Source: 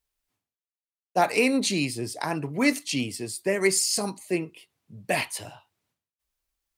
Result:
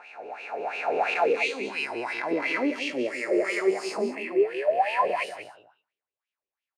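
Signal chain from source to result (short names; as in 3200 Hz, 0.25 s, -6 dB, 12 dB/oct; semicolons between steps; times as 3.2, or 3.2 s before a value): spectral swells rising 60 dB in 2.91 s; 2.31–4.04 bell 340 Hz +8 dB 1.8 oct; 3.97–5.05 painted sound rise 200–1100 Hz -18 dBFS; soft clip -10.5 dBFS, distortion -16 dB; wah 2.9 Hz 410–2800 Hz, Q 4.3; echo 0.187 s -11.5 dB; gain +2.5 dB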